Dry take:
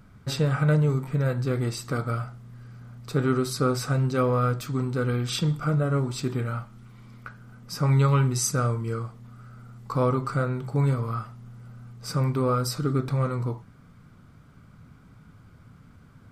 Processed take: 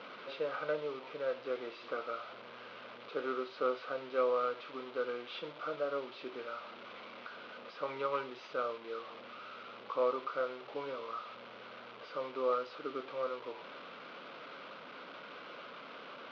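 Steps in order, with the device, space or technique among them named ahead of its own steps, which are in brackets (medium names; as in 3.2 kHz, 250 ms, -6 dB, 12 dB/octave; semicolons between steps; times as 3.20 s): digital answering machine (band-pass 310–3100 Hz; one-bit delta coder 32 kbps, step -33.5 dBFS; cabinet simulation 440–3600 Hz, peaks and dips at 540 Hz +6 dB, 800 Hz -5 dB, 1.8 kHz -7 dB); trim -6 dB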